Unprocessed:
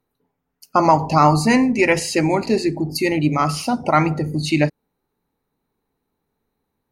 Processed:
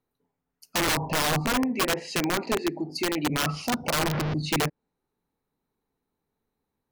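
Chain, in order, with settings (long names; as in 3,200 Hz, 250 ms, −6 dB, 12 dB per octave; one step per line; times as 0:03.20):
0:03.93–0:04.34: linear delta modulator 32 kbit/s, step −14.5 dBFS
treble cut that deepens with the level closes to 1,000 Hz, closed at −11 dBFS
0:01.46–0:03.30: high-pass filter 240 Hz 12 dB per octave
wrap-around overflow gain 12 dB
level −6.5 dB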